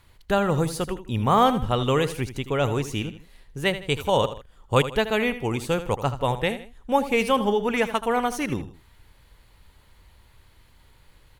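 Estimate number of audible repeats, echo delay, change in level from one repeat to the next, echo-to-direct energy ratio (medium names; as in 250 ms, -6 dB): 2, 79 ms, -8.5 dB, -12.0 dB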